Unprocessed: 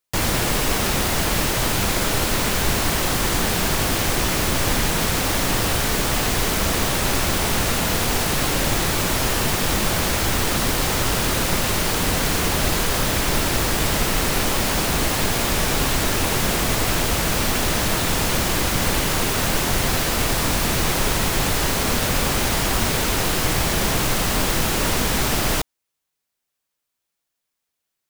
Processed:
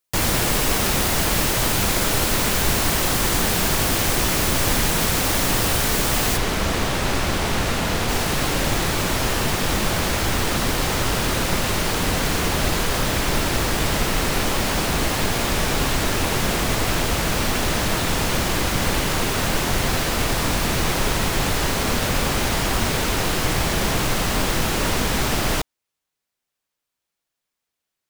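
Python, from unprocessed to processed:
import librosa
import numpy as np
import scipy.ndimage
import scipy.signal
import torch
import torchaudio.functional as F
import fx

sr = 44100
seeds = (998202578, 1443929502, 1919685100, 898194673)

y = fx.high_shelf(x, sr, hz=7200.0, db=fx.steps((0.0, 3.0), (6.36, -10.5), (8.08, -5.0)))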